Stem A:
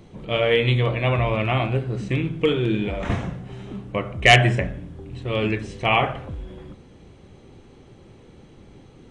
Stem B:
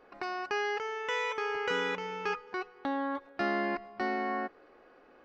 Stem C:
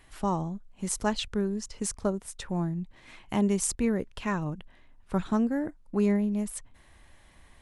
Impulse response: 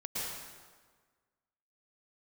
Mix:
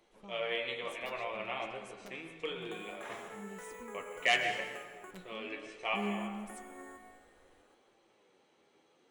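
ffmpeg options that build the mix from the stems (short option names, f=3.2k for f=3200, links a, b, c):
-filter_complex "[0:a]highpass=550,volume=-10.5dB,asplit=2[a][b];[b]volume=-9dB[c];[1:a]lowpass=f=2.2k:w=0.5412,lowpass=f=2.2k:w=1.3066,acrusher=samples=5:mix=1:aa=0.000001,acompressor=threshold=-37dB:ratio=6,adelay=2500,volume=-8dB,asplit=3[d][e][f];[d]atrim=end=5.11,asetpts=PTS-STARTPTS,afade=t=out:st=5.106:d=0.004:c=hsin[g];[e]atrim=start=5.11:end=5.95,asetpts=PTS-STARTPTS,volume=0[h];[f]atrim=start=5.95,asetpts=PTS-STARTPTS,afade=t=in:d=0.004:c=hsin[i];[g][h][i]concat=n=3:v=0:a=1,asplit=2[j][k];[k]volume=-6.5dB[l];[2:a]aeval=exprs='(mod(5.62*val(0)+1,2)-1)/5.62':c=same,volume=-11dB,afade=t=in:st=5.54:d=0.47:silence=0.281838,asplit=3[m][n][o];[n]volume=-21.5dB[p];[o]apad=whole_len=401595[q];[a][q]sidechaincompress=threshold=-46dB:ratio=8:attack=16:release=103[r];[3:a]atrim=start_sample=2205[s];[c][l][p]amix=inputs=3:normalize=0[t];[t][s]afir=irnorm=-1:irlink=0[u];[r][j][m][u]amix=inputs=4:normalize=0,flanger=delay=8.8:depth=3.5:regen=56:speed=0.63:shape=sinusoidal"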